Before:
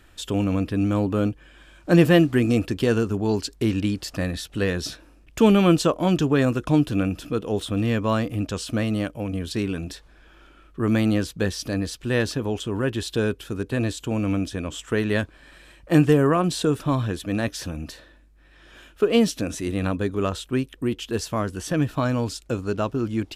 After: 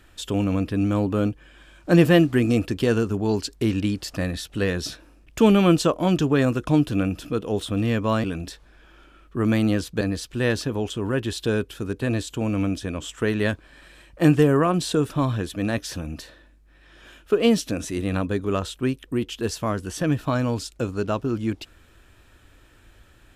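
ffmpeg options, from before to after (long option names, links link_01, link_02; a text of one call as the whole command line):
ffmpeg -i in.wav -filter_complex "[0:a]asplit=3[link_01][link_02][link_03];[link_01]atrim=end=8.242[link_04];[link_02]atrim=start=9.668:end=11.442[link_05];[link_03]atrim=start=11.708[link_06];[link_04][link_05]acrossfade=duration=0.004:curve1=hsin:curve2=hsin[link_07];[link_07][link_06]acrossfade=duration=0.004:curve1=hsin:curve2=hsin" out.wav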